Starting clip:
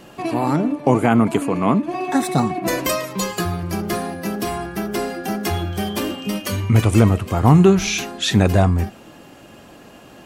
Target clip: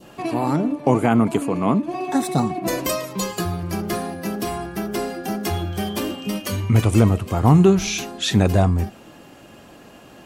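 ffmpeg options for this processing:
ffmpeg -i in.wav -af "adynamicequalizer=threshold=0.0141:dfrequency=1800:dqfactor=1.1:tfrequency=1800:tqfactor=1.1:attack=5:release=100:ratio=0.375:range=2.5:mode=cutabove:tftype=bell,volume=-1.5dB" out.wav

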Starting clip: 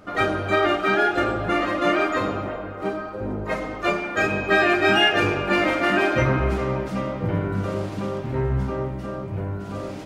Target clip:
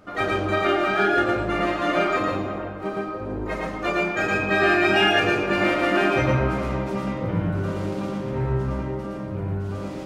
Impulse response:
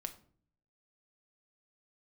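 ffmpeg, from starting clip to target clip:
-filter_complex "[0:a]asplit=2[link_01][link_02];[1:a]atrim=start_sample=2205,adelay=113[link_03];[link_02][link_03]afir=irnorm=-1:irlink=0,volume=2dB[link_04];[link_01][link_04]amix=inputs=2:normalize=0,volume=-3.5dB"

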